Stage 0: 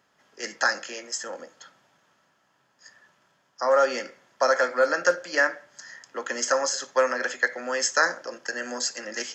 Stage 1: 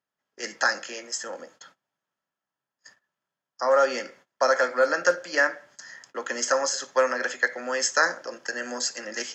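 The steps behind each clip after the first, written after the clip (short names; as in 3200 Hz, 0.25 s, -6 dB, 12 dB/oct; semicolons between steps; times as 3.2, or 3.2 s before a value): gate -52 dBFS, range -22 dB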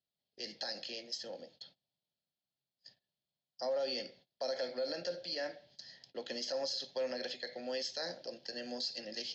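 EQ curve 140 Hz 0 dB, 300 Hz -9 dB, 730 Hz -8 dB, 1200 Hz -30 dB, 4300 Hz +6 dB, 7300 Hz -26 dB; limiter -28.5 dBFS, peak gain reduction 9.5 dB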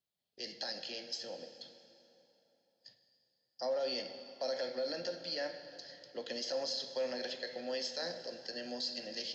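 plate-style reverb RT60 3.4 s, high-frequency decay 0.75×, DRR 8.5 dB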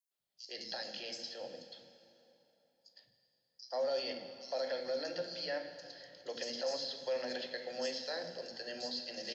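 three bands offset in time highs, mids, lows 0.11/0.19 s, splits 300/5100 Hz; gain +1 dB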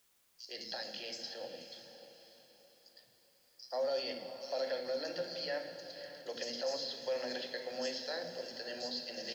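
diffused feedback echo 0.578 s, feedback 40%, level -12 dB; requantised 12-bit, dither triangular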